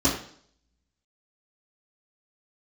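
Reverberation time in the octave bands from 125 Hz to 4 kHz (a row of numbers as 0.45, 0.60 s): 0.60, 0.60, 0.60, 0.55, 0.55, 0.60 s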